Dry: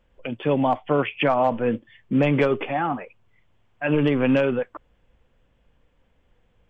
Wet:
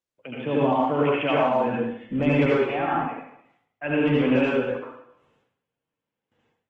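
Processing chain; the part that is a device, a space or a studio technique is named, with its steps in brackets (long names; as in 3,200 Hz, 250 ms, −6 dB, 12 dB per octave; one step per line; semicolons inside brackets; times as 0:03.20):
noise gate with hold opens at −50 dBFS
far-field microphone of a smart speaker (convolution reverb RT60 0.70 s, pre-delay 66 ms, DRR −5.5 dB; high-pass filter 110 Hz 24 dB per octave; automatic gain control gain up to 6 dB; level −8 dB; Opus 20 kbit/s 48,000 Hz)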